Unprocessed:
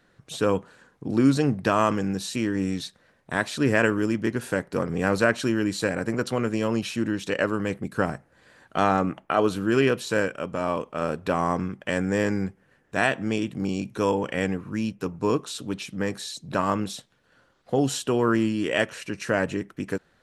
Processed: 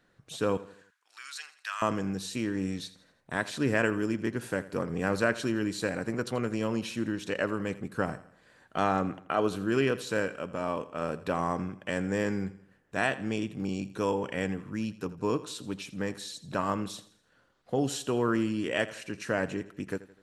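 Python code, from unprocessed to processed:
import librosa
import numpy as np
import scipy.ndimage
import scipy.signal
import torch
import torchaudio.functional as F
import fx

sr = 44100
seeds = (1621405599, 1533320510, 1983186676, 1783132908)

p1 = fx.highpass(x, sr, hz=1400.0, slope=24, at=(0.57, 1.82))
p2 = p1 + fx.echo_feedback(p1, sr, ms=83, feedback_pct=44, wet_db=-17, dry=0)
y = p2 * librosa.db_to_amplitude(-5.5)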